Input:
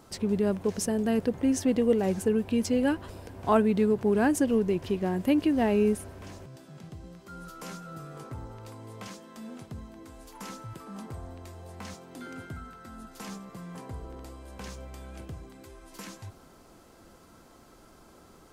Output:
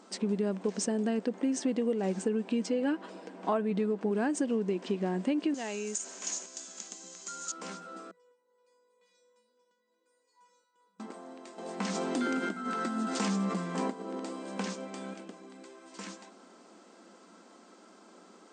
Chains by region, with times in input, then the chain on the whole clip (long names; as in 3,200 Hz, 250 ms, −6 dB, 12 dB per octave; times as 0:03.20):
0:02.61–0:04.11: high-shelf EQ 5,000 Hz −7.5 dB + comb filter 6.3 ms, depth 40%
0:05.54–0:07.52: spectral tilt +3.5 dB per octave + downward compressor 2.5 to 1, threshold −37 dBFS + low-pass with resonance 6,800 Hz, resonance Q 8.6
0:08.11–0:11.00: downward compressor, threshold −43 dBFS + tuned comb filter 490 Hz, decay 0.49 s, mix 100%
0:11.58–0:15.14: parametric band 72 Hz +13.5 dB 2.1 octaves + envelope flattener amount 70%
whole clip: brick-wall band-pass 180–8,900 Hz; downward compressor, threshold −26 dBFS